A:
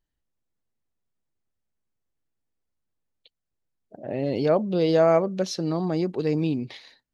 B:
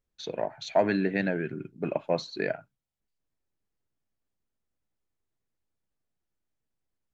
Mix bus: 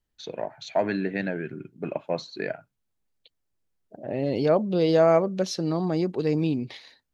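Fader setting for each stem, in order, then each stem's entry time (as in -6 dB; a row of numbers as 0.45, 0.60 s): 0.0, -1.0 dB; 0.00, 0.00 s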